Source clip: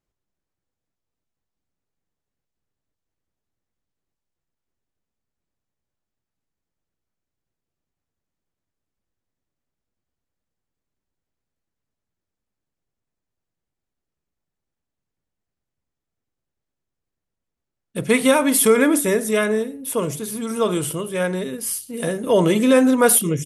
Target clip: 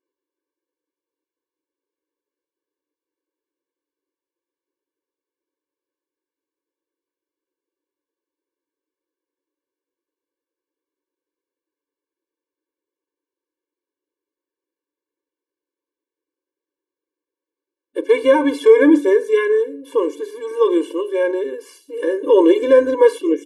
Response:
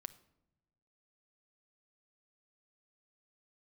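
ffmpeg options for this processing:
-filter_complex "[0:a]acrossover=split=7000[a][b];[b]acompressor=threshold=-36dB:ratio=4:attack=1:release=60[c];[a][c]amix=inputs=2:normalize=0,aemphasis=mode=reproduction:type=riaa,afftfilt=real='re*eq(mod(floor(b*sr/1024/300),2),1)':imag='im*eq(mod(floor(b*sr/1024/300),2),1)':win_size=1024:overlap=0.75,volume=3dB"

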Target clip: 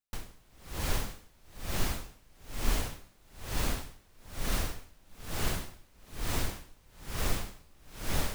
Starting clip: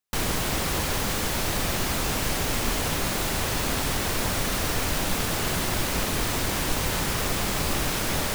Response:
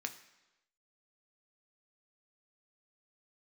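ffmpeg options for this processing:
-af "lowshelf=f=71:g=11.5,aeval=exprs='val(0)*pow(10,-33*(0.5-0.5*cos(2*PI*1.1*n/s))/20)':c=same,volume=-6.5dB"

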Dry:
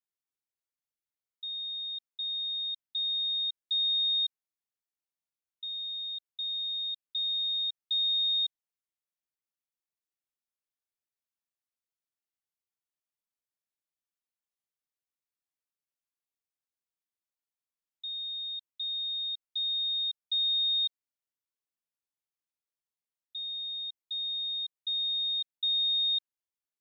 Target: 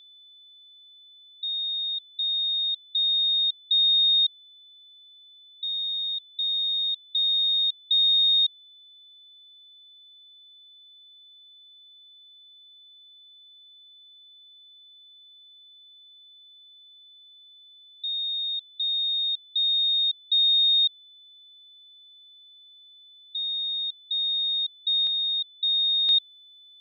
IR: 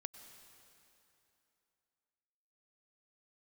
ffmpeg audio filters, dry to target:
-af "asetnsamples=n=441:p=0,asendcmd='25.07 highshelf g -12;26.09 highshelf g -3.5',highshelf=f=3.5k:g=-6,aeval=exprs='val(0)+0.001*sin(2*PI*3500*n/s)':c=same,acontrast=75,volume=4dB"

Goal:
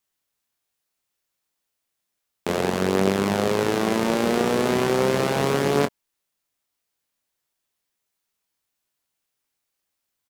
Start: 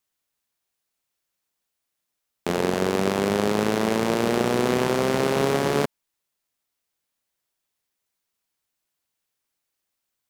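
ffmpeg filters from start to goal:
-af "aecho=1:1:21|31:0.398|0.211"

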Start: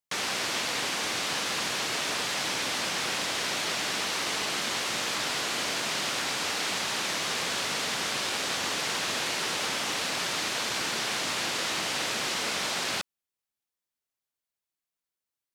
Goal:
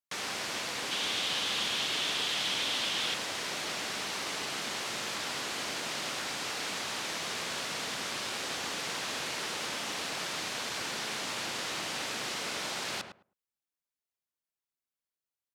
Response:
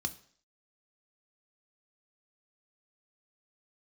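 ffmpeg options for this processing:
-filter_complex "[0:a]asettb=1/sr,asplit=3[a][b][c];[a]atrim=end=0.914[d];[b]atrim=start=0.91:end=3.14,asetpts=PTS-STARTPTS,afade=t=in:d=0.004:c=qsin,afade=t=out:st=2.226:d=0.004:c=qsin,equalizer=f=3.3k:t=o:w=0.65:g=10[e];[c]atrim=start=3.136[f];[d][e]acrossfade=d=0.004:c1=hsin:c2=qsin[g];[g][f]acrossfade=d=0.004:c1=qsin:c2=hsin,asplit=2[h][i];[i]adelay=106,lowpass=f=1.2k:p=1,volume=-5.5dB,asplit=2[j][k];[k]adelay=106,lowpass=f=1.2k:p=1,volume=0.18,asplit=2[l][m];[m]adelay=106,lowpass=f=1.2k:p=1,volume=0.18[n];[h][j][l][n]amix=inputs=4:normalize=0,volume=-6dB"

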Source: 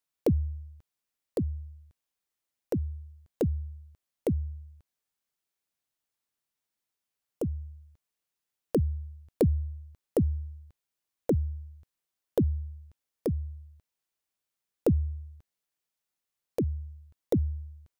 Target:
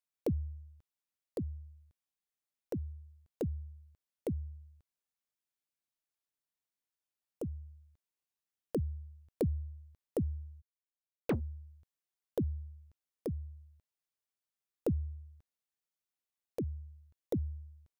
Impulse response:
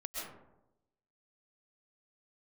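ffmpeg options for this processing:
-filter_complex "[0:a]asplit=3[a][b][c];[a]afade=t=out:st=10.6:d=0.02[d];[b]acrusher=bits=3:mix=0:aa=0.5,afade=t=in:st=10.6:d=0.02,afade=t=out:st=11.39:d=0.02[e];[c]afade=t=in:st=11.39:d=0.02[f];[d][e][f]amix=inputs=3:normalize=0,volume=-8dB"

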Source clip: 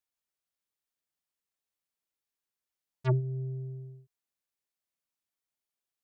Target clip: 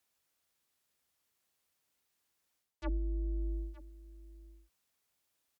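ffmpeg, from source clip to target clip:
-af "areverse,acompressor=threshold=-41dB:ratio=8,areverse,asetrate=47628,aresample=44100,afreqshift=-90,highpass=46,aecho=1:1:917:0.119,volume=10.5dB"

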